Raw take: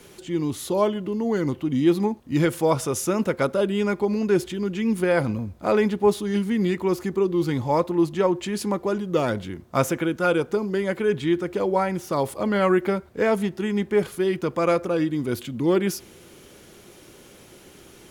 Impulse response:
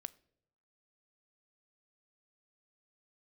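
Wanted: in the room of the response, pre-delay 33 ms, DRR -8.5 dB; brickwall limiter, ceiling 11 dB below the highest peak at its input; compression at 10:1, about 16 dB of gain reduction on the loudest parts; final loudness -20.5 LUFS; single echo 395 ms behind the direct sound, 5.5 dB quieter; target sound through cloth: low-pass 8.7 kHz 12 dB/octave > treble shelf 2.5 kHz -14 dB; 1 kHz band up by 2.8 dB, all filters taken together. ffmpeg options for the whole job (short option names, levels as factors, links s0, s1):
-filter_complex "[0:a]equalizer=f=1000:t=o:g=6,acompressor=threshold=0.0316:ratio=10,alimiter=level_in=1.33:limit=0.0631:level=0:latency=1,volume=0.75,aecho=1:1:395:0.531,asplit=2[s0][s1];[1:a]atrim=start_sample=2205,adelay=33[s2];[s1][s2]afir=irnorm=-1:irlink=0,volume=4.47[s3];[s0][s3]amix=inputs=2:normalize=0,lowpass=8700,highshelf=f=2500:g=-14,volume=2"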